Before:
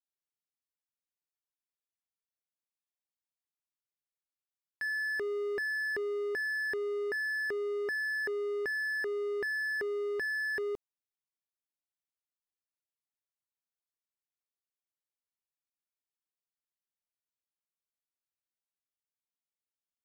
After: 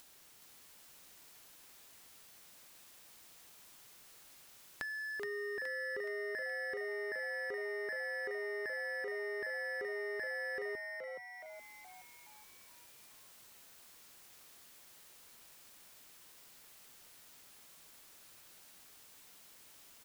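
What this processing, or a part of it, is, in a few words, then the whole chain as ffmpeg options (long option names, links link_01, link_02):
upward and downward compression: -filter_complex "[0:a]acompressor=mode=upward:threshold=-42dB:ratio=2.5,acompressor=threshold=-46dB:ratio=6,asplit=7[link_01][link_02][link_03][link_04][link_05][link_06][link_07];[link_02]adelay=421,afreqshift=110,volume=-4dB[link_08];[link_03]adelay=842,afreqshift=220,volume=-10dB[link_09];[link_04]adelay=1263,afreqshift=330,volume=-16dB[link_10];[link_05]adelay=1684,afreqshift=440,volume=-22.1dB[link_11];[link_06]adelay=2105,afreqshift=550,volume=-28.1dB[link_12];[link_07]adelay=2526,afreqshift=660,volume=-34.1dB[link_13];[link_01][link_08][link_09][link_10][link_11][link_12][link_13]amix=inputs=7:normalize=0,volume=5dB"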